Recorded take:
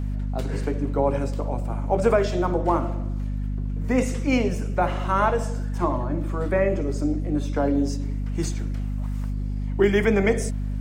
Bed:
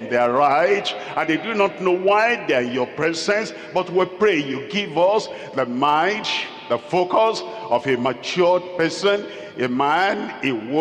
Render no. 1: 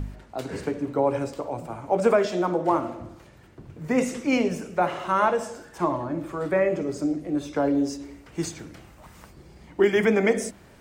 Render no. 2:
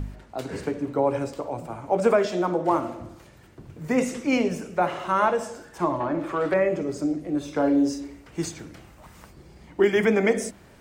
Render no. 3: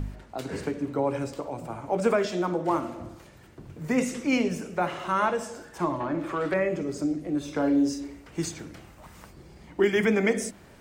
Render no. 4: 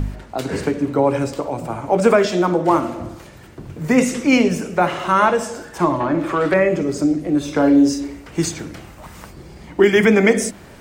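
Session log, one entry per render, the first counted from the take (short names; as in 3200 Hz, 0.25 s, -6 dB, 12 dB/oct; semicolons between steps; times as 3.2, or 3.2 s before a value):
de-hum 50 Hz, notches 5
2.71–3.95 high shelf 4900 Hz +5 dB; 6–6.54 overdrive pedal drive 16 dB, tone 2000 Hz, clips at -13.5 dBFS; 7.44–8.08 doubler 39 ms -7 dB
notches 60/120 Hz; dynamic EQ 660 Hz, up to -5 dB, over -33 dBFS, Q 0.74
gain +10 dB; limiter -3 dBFS, peak gain reduction 1 dB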